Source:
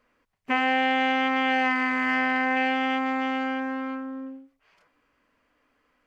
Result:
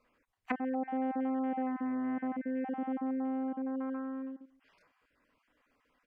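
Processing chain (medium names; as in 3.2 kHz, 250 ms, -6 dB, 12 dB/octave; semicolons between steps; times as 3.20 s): random holes in the spectrogram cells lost 23%; low-pass that closes with the level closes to 500 Hz, closed at -26 dBFS; echo from a far wall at 40 m, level -26 dB; trim -3.5 dB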